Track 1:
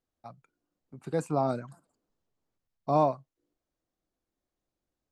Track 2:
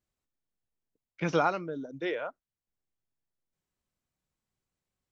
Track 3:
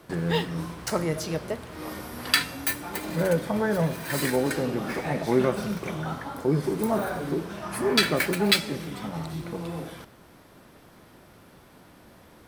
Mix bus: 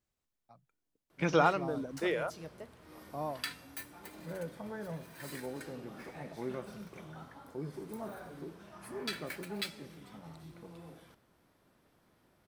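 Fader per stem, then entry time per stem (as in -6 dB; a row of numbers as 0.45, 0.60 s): -14.0, 0.0, -17.0 dB; 0.25, 0.00, 1.10 s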